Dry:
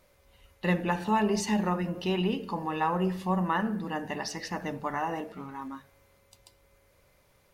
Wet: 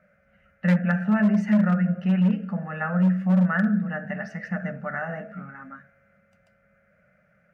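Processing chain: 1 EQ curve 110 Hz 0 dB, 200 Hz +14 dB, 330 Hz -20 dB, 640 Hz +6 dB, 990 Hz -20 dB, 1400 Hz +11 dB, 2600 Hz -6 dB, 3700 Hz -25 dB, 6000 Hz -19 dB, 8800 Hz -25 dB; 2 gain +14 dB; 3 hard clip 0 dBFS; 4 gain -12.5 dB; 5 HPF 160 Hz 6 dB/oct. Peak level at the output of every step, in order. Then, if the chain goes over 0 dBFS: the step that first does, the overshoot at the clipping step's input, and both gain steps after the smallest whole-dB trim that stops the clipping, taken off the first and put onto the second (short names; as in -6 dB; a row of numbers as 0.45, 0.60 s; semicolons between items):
-8.0, +6.0, 0.0, -12.5, -9.5 dBFS; step 2, 6.0 dB; step 2 +8 dB, step 4 -6.5 dB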